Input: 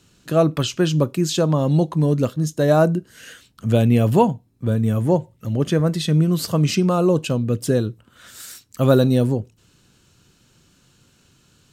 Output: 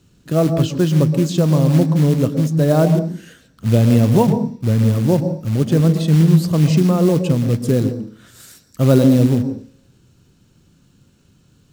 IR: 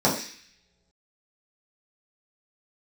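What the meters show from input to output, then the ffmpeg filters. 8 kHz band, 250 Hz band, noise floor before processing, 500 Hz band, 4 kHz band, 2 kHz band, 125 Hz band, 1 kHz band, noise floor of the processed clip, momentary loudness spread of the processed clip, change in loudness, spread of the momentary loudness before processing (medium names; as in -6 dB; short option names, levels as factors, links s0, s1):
-0.5 dB, +4.5 dB, -59 dBFS, +0.5 dB, -2.0 dB, -1.0 dB, +5.0 dB, -1.5 dB, -55 dBFS, 8 LU, +3.5 dB, 10 LU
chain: -filter_complex "[0:a]lowshelf=f=480:g=10,acrusher=bits=5:mode=log:mix=0:aa=0.000001,asplit=2[s0][s1];[1:a]atrim=start_sample=2205,adelay=117[s2];[s1][s2]afir=irnorm=-1:irlink=0,volume=0.0398[s3];[s0][s3]amix=inputs=2:normalize=0,volume=0.562"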